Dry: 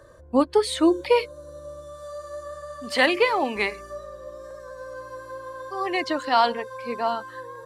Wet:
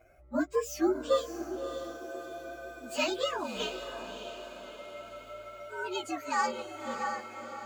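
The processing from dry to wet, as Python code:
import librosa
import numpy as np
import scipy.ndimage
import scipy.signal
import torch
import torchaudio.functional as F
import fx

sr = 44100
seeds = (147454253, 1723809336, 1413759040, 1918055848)

y = fx.partial_stretch(x, sr, pct=117)
y = fx.echo_diffused(y, sr, ms=611, feedback_pct=49, wet_db=-9)
y = y * librosa.db_to_amplitude(-7.0)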